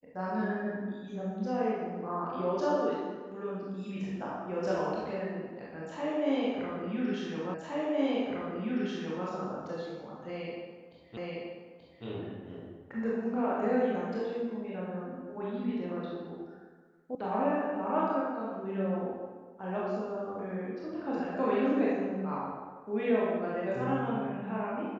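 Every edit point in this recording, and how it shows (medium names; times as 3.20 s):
7.54 s: repeat of the last 1.72 s
11.17 s: repeat of the last 0.88 s
17.15 s: sound stops dead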